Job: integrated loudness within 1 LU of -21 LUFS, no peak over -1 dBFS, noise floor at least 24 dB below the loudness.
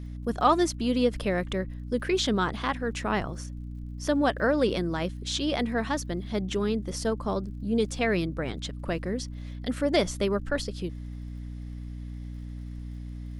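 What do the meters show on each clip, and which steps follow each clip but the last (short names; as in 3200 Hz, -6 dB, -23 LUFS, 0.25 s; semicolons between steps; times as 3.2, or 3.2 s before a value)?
ticks 55/s; hum 60 Hz; harmonics up to 300 Hz; hum level -35 dBFS; loudness -28.5 LUFS; peak -10.0 dBFS; loudness target -21.0 LUFS
-> de-click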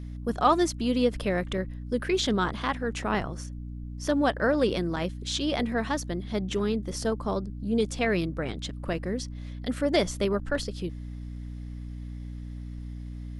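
ticks 0.075/s; hum 60 Hz; harmonics up to 300 Hz; hum level -35 dBFS
-> notches 60/120/180/240/300 Hz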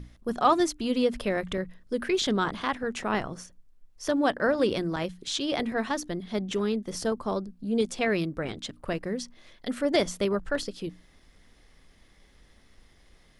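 hum none; loudness -28.5 LUFS; peak -9.5 dBFS; loudness target -21.0 LUFS
-> gain +7.5 dB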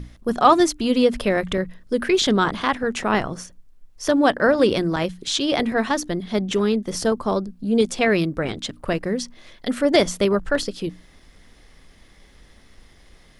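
loudness -21.5 LUFS; peak -2.0 dBFS; noise floor -52 dBFS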